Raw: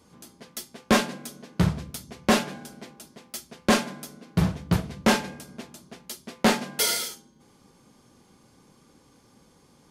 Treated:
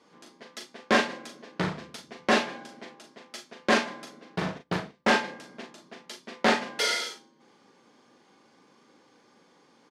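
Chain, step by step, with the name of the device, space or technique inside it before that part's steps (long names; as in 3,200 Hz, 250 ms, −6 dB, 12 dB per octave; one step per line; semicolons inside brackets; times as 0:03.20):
0:04.36–0:05.10: noise gate −31 dBFS, range −21 dB
intercom (band-pass filter 300–4,800 Hz; parametric band 1,800 Hz +4 dB 0.41 octaves; soft clipping −10.5 dBFS, distortion −20 dB; double-tracking delay 39 ms −6.5 dB)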